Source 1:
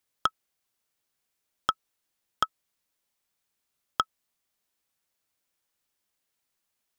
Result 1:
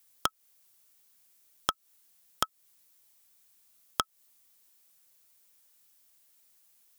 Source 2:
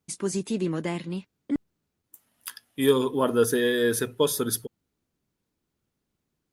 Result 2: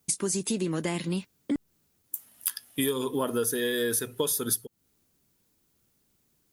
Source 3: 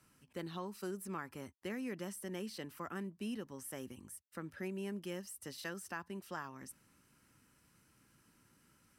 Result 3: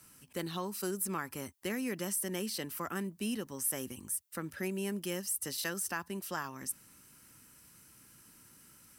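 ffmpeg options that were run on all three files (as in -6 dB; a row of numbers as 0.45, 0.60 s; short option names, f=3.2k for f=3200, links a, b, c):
-af "crystalizer=i=2:c=0,acompressor=threshold=-30dB:ratio=8,volume=5dB"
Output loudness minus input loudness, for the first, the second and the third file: -2.5, -3.5, +8.0 LU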